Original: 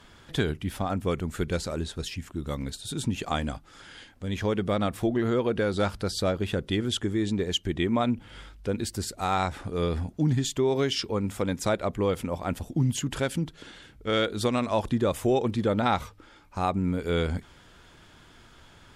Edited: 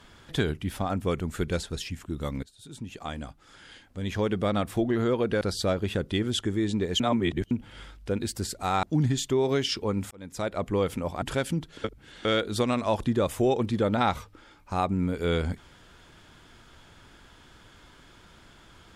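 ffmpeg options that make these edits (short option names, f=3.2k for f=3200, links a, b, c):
-filter_complex "[0:a]asplit=11[a][b][c][d][e][f][g][h][i][j][k];[a]atrim=end=1.632[l];[b]atrim=start=1.888:end=2.69,asetpts=PTS-STARTPTS,afade=t=out:st=0.798:d=0.004:c=hsin:silence=0.105925[m];[c]atrim=start=2.69:end=5.672,asetpts=PTS-STARTPTS,afade=t=in:d=1.82:silence=0.105925[n];[d]atrim=start=5.988:end=7.582[o];[e]atrim=start=7.578:end=8.092,asetpts=PTS-STARTPTS,areverse[p];[f]atrim=start=8.088:end=9.412[q];[g]atrim=start=10.098:end=11.38,asetpts=PTS-STARTPTS,afade=t=out:st=1.278:d=0.004:c=hsin[r];[h]atrim=start=11.38:end=12.492,asetpts=PTS-STARTPTS,afade=t=in:d=0.57[s];[i]atrim=start=13.068:end=13.692[t];[j]atrim=start=13.688:end=14.102,asetpts=PTS-STARTPTS,areverse[u];[k]atrim=start=14.098[v];[m][n]concat=n=2:v=0:a=1[w];[l][w]acrossfade=d=0.004:c1=hsin:c2=hsin[x];[x][o]acrossfade=d=0.004:c1=hsin:c2=hsin[y];[y][p]acrossfade=d=0.004:c1=hsin:c2=hsin[z];[z][q]acrossfade=d=0.004:c1=hsin:c2=hsin[aa];[r][s]concat=n=2:v=0:a=1[ab];[aa][ab]acrossfade=d=0.004:c1=hsin:c2=hsin[ac];[ac][t]acrossfade=d=0.004:c1=hsin:c2=hsin[ad];[ad][u]acrossfade=d=0.004:c1=hsin:c2=hsin[ae];[ae][v]acrossfade=d=0.004:c1=hsin:c2=hsin"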